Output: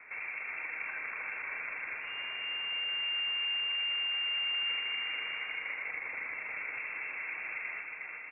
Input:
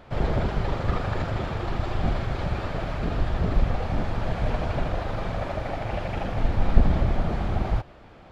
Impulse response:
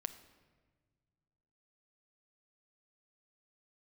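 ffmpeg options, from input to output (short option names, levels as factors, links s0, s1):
-filter_complex "[0:a]highpass=f=94:w=0.5412,highpass=f=94:w=1.3066,lowshelf=f=310:t=q:w=1.5:g=-11.5,acompressor=threshold=0.01:ratio=2.5,asettb=1/sr,asplit=3[s0][s1][s2];[s0]atrim=end=2.004[s3];[s1]atrim=start=2:end=4.66,asetpts=PTS-STARTPTS,afade=t=in:d=0.004:c=qsin,afade=t=out:st=2.656:d=0.004:c=qsin,aeval=exprs='max(val(0),0)':c=same[s4];[s2]atrim=start=4.656[s5];[s3][s4]acrossfade=d=0.004:c1=hsin:c2=qsin[s6];[s6][s5]acrossfade=d=0.004:c1=qsin:c2=hsin,aecho=1:1:360|630|832.5|984.4|1098:0.631|0.398|0.251|0.158|0.1[s7];[1:a]atrim=start_sample=2205[s8];[s7][s8]afir=irnorm=-1:irlink=0,lowpass=f=2400:t=q:w=0.5098,lowpass=f=2400:t=q:w=0.6013,lowpass=f=2400:t=q:w=0.9,lowpass=f=2400:t=q:w=2.563,afreqshift=-2800"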